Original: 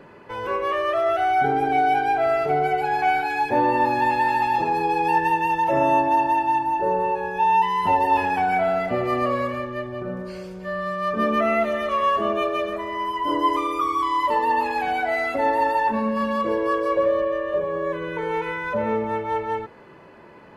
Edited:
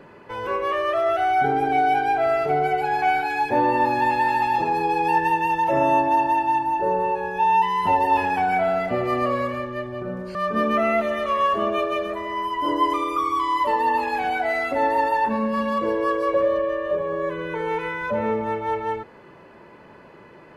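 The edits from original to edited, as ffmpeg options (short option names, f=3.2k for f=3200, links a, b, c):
-filter_complex "[0:a]asplit=2[a][b];[a]atrim=end=10.352[c];[b]atrim=start=10.978[d];[c][d]acrossfade=d=0.004:c1=hsin:c2=hsin"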